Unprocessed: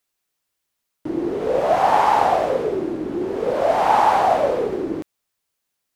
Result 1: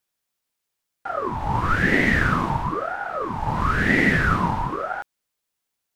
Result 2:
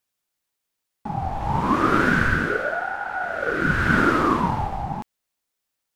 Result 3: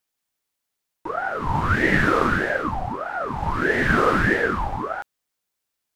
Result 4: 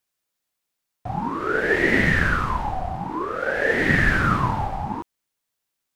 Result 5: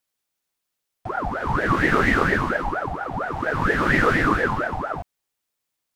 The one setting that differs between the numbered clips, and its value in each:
ring modulator with a swept carrier, at: 1 Hz, 0.33 Hz, 1.6 Hz, 0.54 Hz, 4.3 Hz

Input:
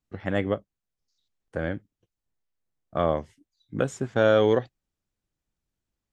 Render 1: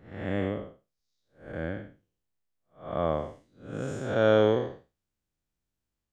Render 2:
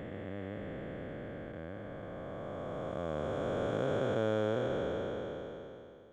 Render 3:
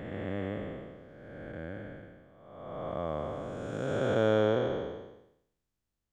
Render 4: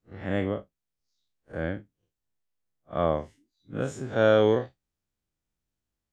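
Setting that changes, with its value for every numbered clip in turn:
spectral blur, width: 225 ms, 1670 ms, 660 ms, 86 ms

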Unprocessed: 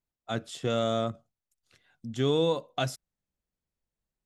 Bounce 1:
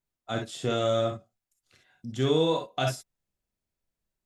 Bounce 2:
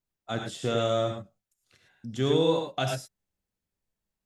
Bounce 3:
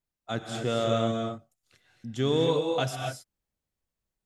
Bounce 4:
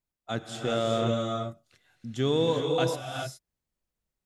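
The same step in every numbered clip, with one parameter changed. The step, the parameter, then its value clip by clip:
gated-style reverb, gate: 80 ms, 130 ms, 290 ms, 440 ms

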